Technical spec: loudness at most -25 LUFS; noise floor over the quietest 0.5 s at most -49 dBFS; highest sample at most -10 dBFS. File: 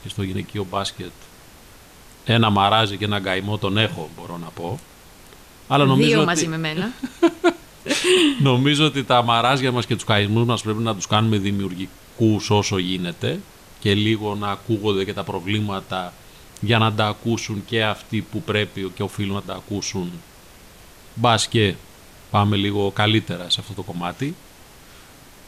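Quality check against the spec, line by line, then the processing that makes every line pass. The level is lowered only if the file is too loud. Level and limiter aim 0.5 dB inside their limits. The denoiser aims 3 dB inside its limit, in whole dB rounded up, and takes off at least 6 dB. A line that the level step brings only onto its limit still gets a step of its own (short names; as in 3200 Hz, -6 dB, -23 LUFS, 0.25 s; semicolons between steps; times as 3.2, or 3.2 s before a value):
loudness -20.5 LUFS: fail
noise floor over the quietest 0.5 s -46 dBFS: fail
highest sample -5.0 dBFS: fail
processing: gain -5 dB; limiter -10.5 dBFS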